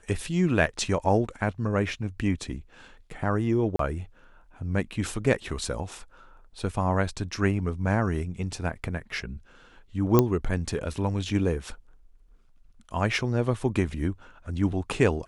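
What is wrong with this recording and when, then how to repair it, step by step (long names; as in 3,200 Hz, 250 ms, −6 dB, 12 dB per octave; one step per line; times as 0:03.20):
0:03.76–0:03.79: drop-out 33 ms
0:10.19: click −6 dBFS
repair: click removal
repair the gap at 0:03.76, 33 ms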